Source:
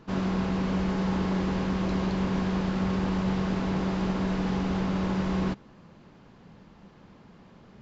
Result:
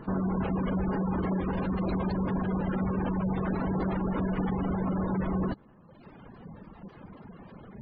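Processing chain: reverb removal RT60 1.1 s; peak limiter -29.5 dBFS, peak gain reduction 10.5 dB; spectral gate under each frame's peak -25 dB strong; trim +8 dB

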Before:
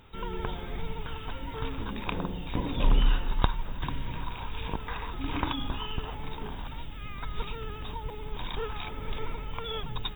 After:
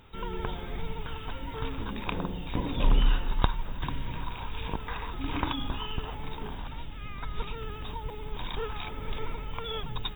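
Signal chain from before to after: 6.57–7.56 s: treble shelf 8.1 kHz -> 5.6 kHz -6.5 dB

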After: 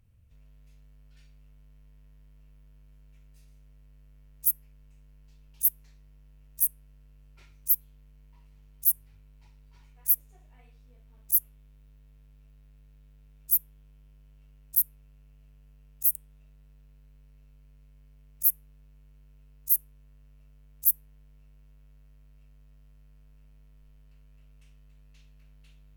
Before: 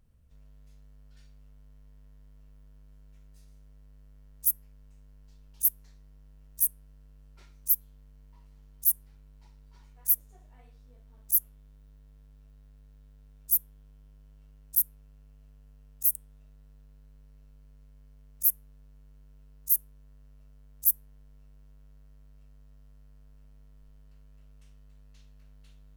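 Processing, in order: fifteen-band graphic EQ 100 Hz +11 dB, 2.5 kHz +8 dB, 16 kHz +5 dB; trim -2.5 dB

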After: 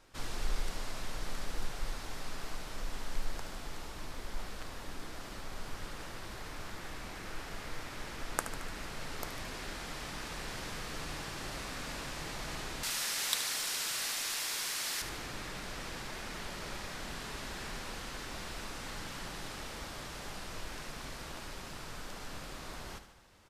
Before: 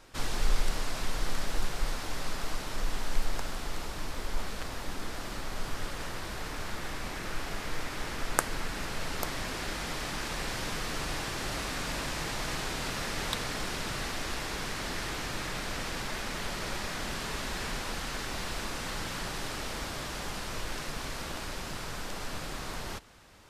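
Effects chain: 12.83–15.02 s: tilt EQ +4.5 dB/octave; feedback delay 74 ms, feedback 57%, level -11 dB; trim -7 dB

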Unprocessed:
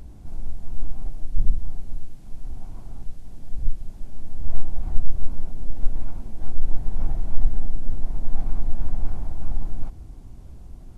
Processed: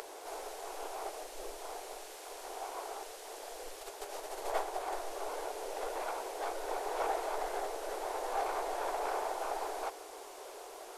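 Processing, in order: 3.80–4.94 s: transient shaper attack +6 dB, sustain -2 dB; elliptic high-pass 420 Hz, stop band 50 dB; trim +14.5 dB

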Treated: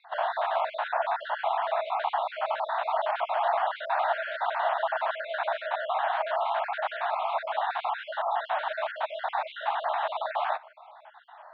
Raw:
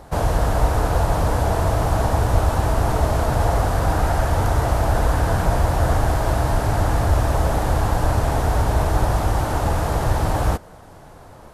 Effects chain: random holes in the spectrogram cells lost 42%; Chebyshev band-pass 630–3800 Hz, order 5

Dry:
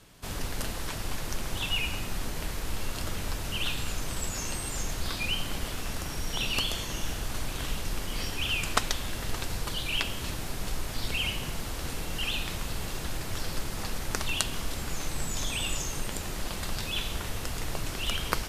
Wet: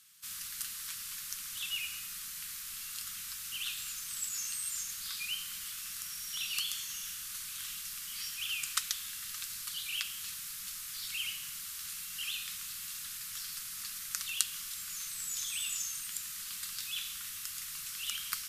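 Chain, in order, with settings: elliptic band-stop 200–1200 Hz, stop band 60 dB; tilt EQ +4.5 dB/octave; trim -12.5 dB

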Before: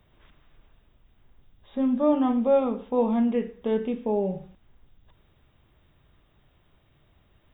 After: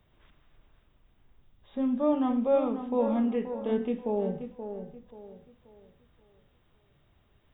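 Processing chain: tape echo 531 ms, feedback 38%, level -8 dB, low-pass 2.2 kHz; trim -4 dB

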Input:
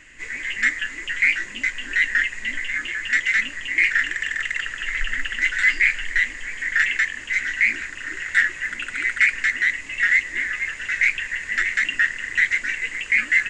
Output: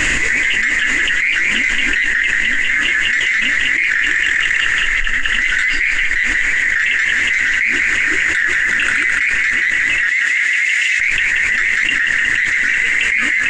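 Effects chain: 10.09–11.00 s: steep high-pass 2.1 kHz 36 dB/octave; tape echo 183 ms, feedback 79%, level -9 dB, low-pass 5.7 kHz; level flattener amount 100%; trim -2 dB

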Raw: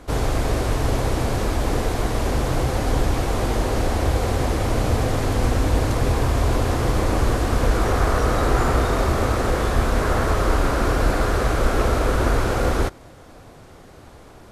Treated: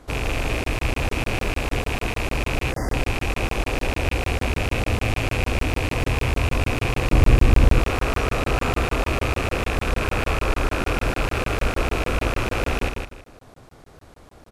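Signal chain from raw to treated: rattle on loud lows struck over -29 dBFS, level -12 dBFS; feedback delay 160 ms, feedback 25%, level -5.5 dB; 2.72–2.93 s: spectral selection erased 2.1–4.6 kHz; 7.11–7.79 s: bass shelf 260 Hz +11 dB; crackling interface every 0.15 s, samples 1024, zero, from 0.64 s; trim -4.5 dB

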